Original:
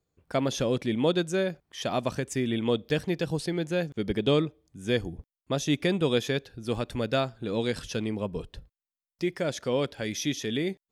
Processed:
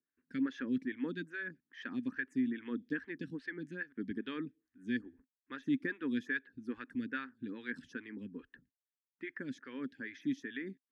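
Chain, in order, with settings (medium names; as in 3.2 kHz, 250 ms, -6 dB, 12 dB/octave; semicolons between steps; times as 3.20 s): two resonant band-passes 660 Hz, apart 2.7 oct; harmonic-percussive split percussive +5 dB; lamp-driven phase shifter 2.4 Hz; trim +1 dB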